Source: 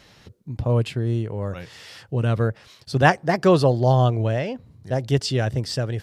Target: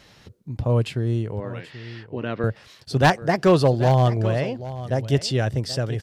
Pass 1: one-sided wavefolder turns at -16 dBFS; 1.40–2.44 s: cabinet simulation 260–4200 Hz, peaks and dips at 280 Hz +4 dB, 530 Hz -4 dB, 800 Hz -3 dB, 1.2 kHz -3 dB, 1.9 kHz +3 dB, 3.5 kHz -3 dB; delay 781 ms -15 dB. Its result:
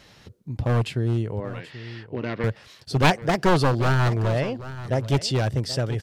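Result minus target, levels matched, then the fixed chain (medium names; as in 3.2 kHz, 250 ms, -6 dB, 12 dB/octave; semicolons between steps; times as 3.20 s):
one-sided wavefolder: distortion +14 dB
one-sided wavefolder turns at -9 dBFS; 1.40–2.44 s: cabinet simulation 260–4200 Hz, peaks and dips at 280 Hz +4 dB, 530 Hz -4 dB, 800 Hz -3 dB, 1.2 kHz -3 dB, 1.9 kHz +3 dB, 3.5 kHz -3 dB; delay 781 ms -15 dB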